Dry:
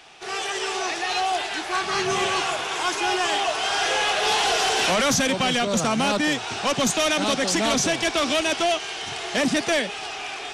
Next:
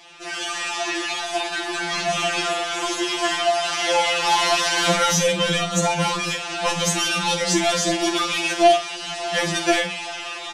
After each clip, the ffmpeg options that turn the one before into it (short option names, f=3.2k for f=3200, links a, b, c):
-filter_complex "[0:a]asplit=2[a][b];[b]aecho=0:1:48|87:0.355|0.15[c];[a][c]amix=inputs=2:normalize=0,afftfilt=real='re*2.83*eq(mod(b,8),0)':imag='im*2.83*eq(mod(b,8),0)':win_size=2048:overlap=0.75,volume=3.5dB"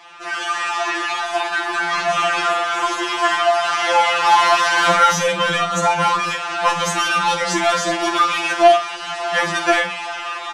-af "equalizer=f=1.2k:w=0.8:g=14.5,volume=-4dB"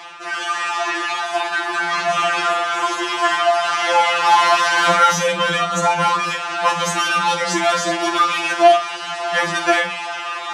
-af "highpass=f=50:w=0.5412,highpass=f=50:w=1.3066,areverse,acompressor=mode=upward:threshold=-23dB:ratio=2.5,areverse"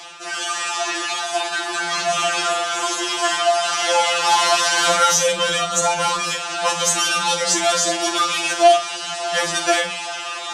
-filter_complex "[0:a]equalizer=f=250:t=o:w=1:g=-8,equalizer=f=1k:t=o:w=1:g=-8,equalizer=f=2k:t=o:w=1:g=-7,equalizer=f=8k:t=o:w=1:g=6,acrossover=split=320|1500[a][b][c];[a]asoftclip=type=tanh:threshold=-39.5dB[d];[d][b][c]amix=inputs=3:normalize=0,volume=4dB"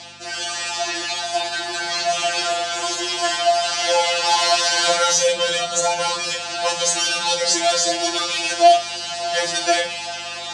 -af "aeval=exprs='val(0)+0.00891*(sin(2*PI*50*n/s)+sin(2*PI*2*50*n/s)/2+sin(2*PI*3*50*n/s)/3+sin(2*PI*4*50*n/s)/4+sin(2*PI*5*50*n/s)/5)':c=same,highpass=f=120:w=0.5412,highpass=f=120:w=1.3066,equalizer=f=180:t=q:w=4:g=-7,equalizer=f=590:t=q:w=4:g=6,equalizer=f=1.2k:t=q:w=4:g=-9,equalizer=f=4.5k:t=q:w=4:g=7,lowpass=f=9.1k:w=0.5412,lowpass=f=9.1k:w=1.3066,volume=-1.5dB"